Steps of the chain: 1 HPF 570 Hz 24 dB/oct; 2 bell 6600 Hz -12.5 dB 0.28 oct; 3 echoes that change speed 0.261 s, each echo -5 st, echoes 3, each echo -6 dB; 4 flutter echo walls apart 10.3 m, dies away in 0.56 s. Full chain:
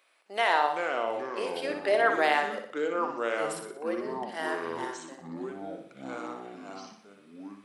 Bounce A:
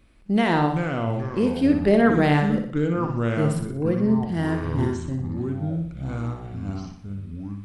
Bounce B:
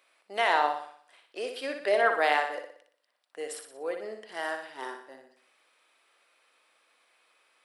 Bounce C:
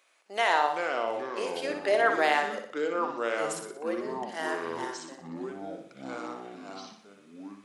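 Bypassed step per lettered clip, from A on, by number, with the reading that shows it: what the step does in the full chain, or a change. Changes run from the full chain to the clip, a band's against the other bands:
1, 125 Hz band +29.5 dB; 3, 250 Hz band -8.5 dB; 2, 8 kHz band +3.0 dB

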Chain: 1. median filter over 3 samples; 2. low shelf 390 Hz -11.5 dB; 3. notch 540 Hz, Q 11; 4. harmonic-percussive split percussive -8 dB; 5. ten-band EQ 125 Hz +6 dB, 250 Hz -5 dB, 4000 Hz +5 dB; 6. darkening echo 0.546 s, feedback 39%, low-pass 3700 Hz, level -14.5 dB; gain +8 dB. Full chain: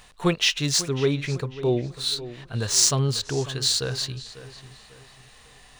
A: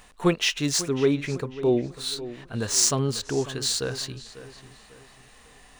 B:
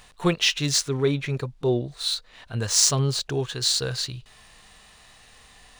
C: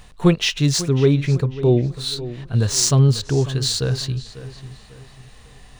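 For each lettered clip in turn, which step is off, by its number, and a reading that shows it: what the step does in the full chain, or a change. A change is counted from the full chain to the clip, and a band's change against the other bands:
5, 250 Hz band +3.5 dB; 6, momentary loudness spread change -2 LU; 2, 125 Hz band +9.0 dB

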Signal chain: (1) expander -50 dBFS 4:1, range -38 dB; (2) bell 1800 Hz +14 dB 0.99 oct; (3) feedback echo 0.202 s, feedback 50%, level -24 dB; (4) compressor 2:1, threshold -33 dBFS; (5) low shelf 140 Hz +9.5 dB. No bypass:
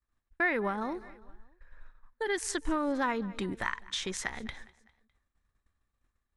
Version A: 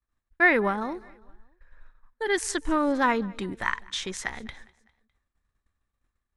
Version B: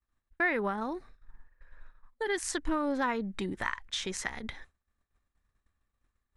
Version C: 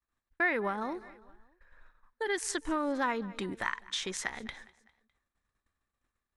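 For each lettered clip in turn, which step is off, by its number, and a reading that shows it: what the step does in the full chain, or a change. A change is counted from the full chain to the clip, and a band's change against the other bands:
4, mean gain reduction 3.5 dB; 3, momentary loudness spread change -2 LU; 5, 125 Hz band -3.5 dB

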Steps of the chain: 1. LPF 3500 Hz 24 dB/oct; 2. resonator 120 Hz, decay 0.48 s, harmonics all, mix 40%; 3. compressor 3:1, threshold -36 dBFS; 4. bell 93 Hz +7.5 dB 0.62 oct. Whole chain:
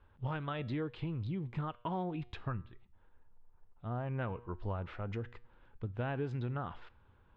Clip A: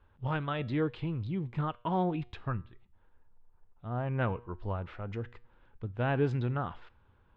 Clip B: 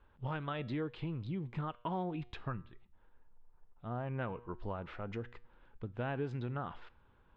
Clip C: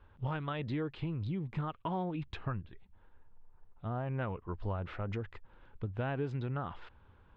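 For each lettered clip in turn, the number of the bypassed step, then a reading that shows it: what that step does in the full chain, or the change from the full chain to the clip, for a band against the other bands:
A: 3, loudness change +5.5 LU; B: 4, 125 Hz band -2.5 dB; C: 2, loudness change +1.5 LU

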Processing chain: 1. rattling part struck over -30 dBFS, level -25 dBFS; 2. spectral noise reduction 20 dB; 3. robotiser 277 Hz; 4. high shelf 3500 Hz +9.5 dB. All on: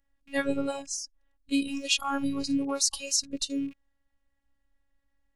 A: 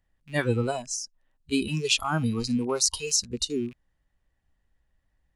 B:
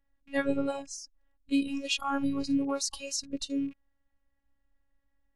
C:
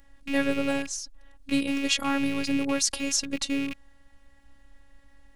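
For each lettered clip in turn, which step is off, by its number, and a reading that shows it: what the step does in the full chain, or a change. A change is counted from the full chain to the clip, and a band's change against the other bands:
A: 3, 125 Hz band +15.5 dB; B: 4, 8 kHz band -7.0 dB; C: 2, 125 Hz band +3.0 dB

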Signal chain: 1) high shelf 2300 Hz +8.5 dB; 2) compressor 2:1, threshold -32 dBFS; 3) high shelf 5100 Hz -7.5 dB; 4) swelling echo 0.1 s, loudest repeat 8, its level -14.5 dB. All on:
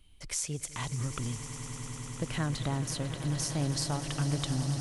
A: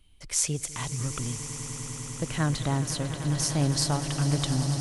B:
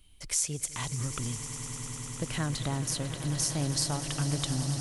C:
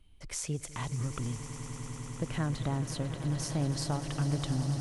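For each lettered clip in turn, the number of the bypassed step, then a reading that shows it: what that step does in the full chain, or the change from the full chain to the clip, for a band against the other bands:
2, mean gain reduction 3.0 dB; 3, 8 kHz band +5.0 dB; 1, 8 kHz band -4.5 dB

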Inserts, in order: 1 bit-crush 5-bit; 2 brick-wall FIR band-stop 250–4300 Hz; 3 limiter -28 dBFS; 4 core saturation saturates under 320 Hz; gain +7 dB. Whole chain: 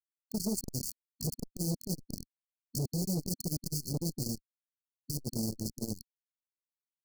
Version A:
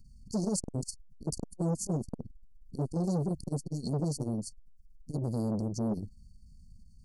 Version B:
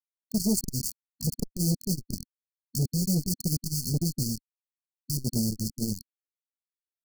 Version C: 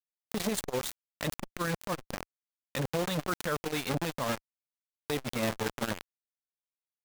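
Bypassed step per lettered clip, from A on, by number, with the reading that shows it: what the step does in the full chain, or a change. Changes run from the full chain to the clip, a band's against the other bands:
1, distortion -7 dB; 3, mean gain reduction 4.0 dB; 2, 1 kHz band +19.5 dB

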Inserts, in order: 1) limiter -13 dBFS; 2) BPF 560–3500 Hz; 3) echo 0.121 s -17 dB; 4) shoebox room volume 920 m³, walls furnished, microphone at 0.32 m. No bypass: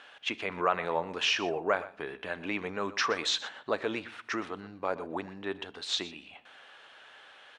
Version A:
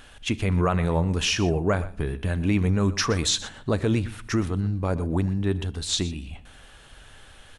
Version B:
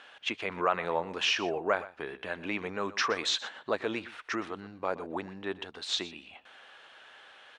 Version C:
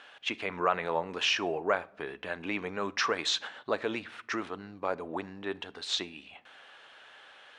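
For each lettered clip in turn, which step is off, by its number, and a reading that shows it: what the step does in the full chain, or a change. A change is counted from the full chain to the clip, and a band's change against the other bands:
2, 125 Hz band +21.5 dB; 4, echo-to-direct -14.0 dB to -17.0 dB; 3, echo-to-direct -14.0 dB to -17.0 dB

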